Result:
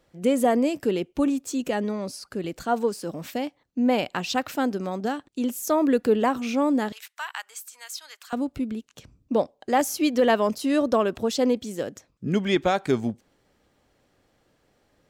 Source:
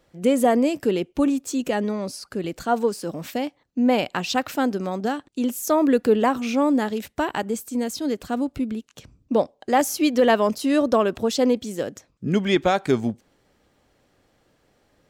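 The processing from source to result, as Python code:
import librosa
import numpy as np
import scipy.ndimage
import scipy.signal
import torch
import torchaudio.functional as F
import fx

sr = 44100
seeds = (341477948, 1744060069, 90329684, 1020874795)

y = fx.highpass(x, sr, hz=1100.0, slope=24, at=(6.92, 8.33))
y = y * librosa.db_to_amplitude(-2.5)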